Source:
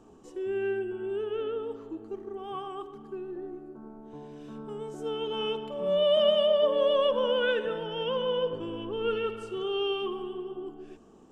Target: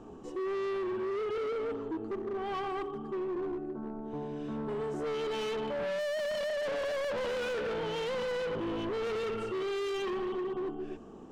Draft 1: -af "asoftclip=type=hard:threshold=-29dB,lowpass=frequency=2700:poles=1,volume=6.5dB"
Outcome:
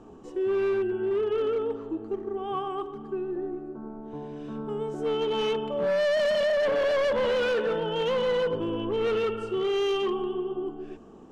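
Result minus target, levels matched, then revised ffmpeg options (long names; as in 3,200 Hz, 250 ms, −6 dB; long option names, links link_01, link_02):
hard clipping: distortion −5 dB
-af "asoftclip=type=hard:threshold=-38.5dB,lowpass=frequency=2700:poles=1,volume=6.5dB"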